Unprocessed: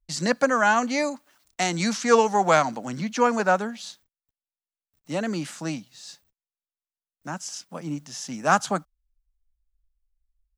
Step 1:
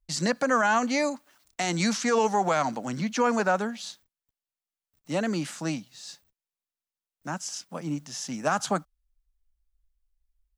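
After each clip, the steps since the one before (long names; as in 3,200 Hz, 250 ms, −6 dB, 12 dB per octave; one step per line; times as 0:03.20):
brickwall limiter −14 dBFS, peak gain reduction 9 dB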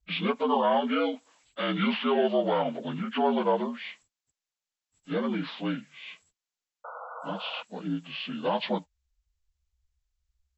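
partials spread apart or drawn together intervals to 77%
sound drawn into the spectrogram noise, 0:06.84–0:07.63, 460–1,500 Hz −41 dBFS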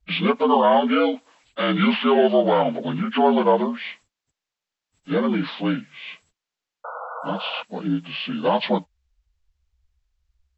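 high-frequency loss of the air 91 metres
level +8 dB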